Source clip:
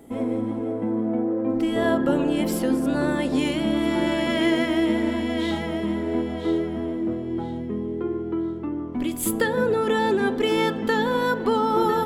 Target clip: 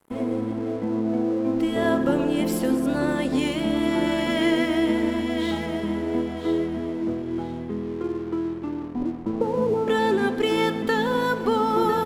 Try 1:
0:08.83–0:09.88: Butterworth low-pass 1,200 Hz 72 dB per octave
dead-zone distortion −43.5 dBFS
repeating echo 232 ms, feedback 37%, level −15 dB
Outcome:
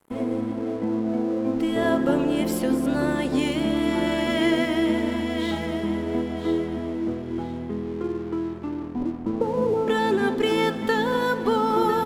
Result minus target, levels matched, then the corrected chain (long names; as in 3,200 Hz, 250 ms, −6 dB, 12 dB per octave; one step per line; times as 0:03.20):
echo 105 ms late
0:08.83–0:09.88: Butterworth low-pass 1,200 Hz 72 dB per octave
dead-zone distortion −43.5 dBFS
repeating echo 127 ms, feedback 37%, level −15 dB